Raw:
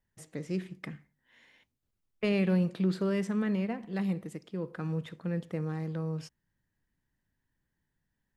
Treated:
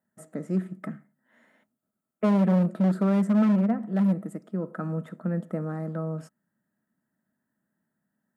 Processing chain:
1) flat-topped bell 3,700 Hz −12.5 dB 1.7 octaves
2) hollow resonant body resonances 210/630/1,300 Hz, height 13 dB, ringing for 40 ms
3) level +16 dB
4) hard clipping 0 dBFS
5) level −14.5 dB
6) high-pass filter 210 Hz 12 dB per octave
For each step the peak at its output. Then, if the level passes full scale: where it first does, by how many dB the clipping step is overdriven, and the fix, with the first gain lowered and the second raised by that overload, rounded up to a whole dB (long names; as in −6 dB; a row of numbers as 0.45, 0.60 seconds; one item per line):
−17.0, −9.0, +7.0, 0.0, −14.5, −12.0 dBFS
step 3, 7.0 dB
step 3 +9 dB, step 5 −7.5 dB